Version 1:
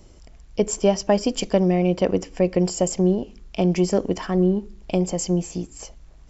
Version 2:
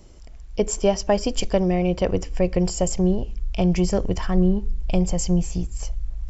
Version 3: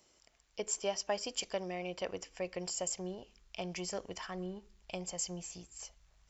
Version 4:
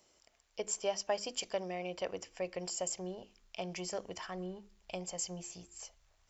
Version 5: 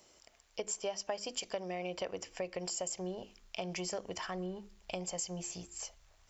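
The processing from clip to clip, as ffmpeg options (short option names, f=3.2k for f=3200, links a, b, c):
-af "asubboost=boost=12:cutoff=82"
-af "highpass=f=1.3k:p=1,volume=-7.5dB"
-af "equalizer=f=640:w=1.5:g=2.5,bandreject=f=50:t=h:w=6,bandreject=f=100:t=h:w=6,bandreject=f=150:t=h:w=6,bandreject=f=200:t=h:w=6,bandreject=f=250:t=h:w=6,bandreject=f=300:t=h:w=6,bandreject=f=350:t=h:w=6,volume=-1dB"
-af "acompressor=threshold=-42dB:ratio=3,volume=5.5dB"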